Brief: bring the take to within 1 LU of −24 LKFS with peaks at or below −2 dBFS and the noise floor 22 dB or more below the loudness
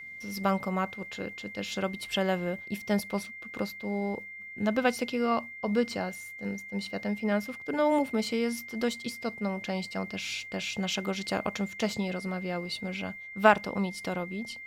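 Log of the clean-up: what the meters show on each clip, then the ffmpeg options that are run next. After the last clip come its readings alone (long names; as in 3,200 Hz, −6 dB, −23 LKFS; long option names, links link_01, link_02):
interfering tone 2,100 Hz; level of the tone −41 dBFS; integrated loudness −31.0 LKFS; sample peak −6.5 dBFS; target loudness −24.0 LKFS
→ -af "bandreject=frequency=2100:width=30"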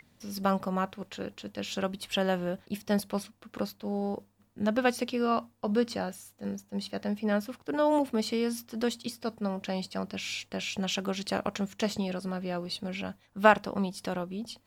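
interfering tone none found; integrated loudness −31.5 LKFS; sample peak −6.5 dBFS; target loudness −24.0 LKFS
→ -af "volume=7.5dB,alimiter=limit=-2dB:level=0:latency=1"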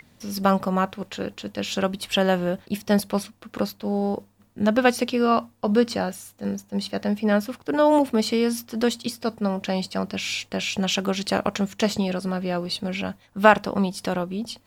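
integrated loudness −24.5 LKFS; sample peak −2.0 dBFS; background noise floor −59 dBFS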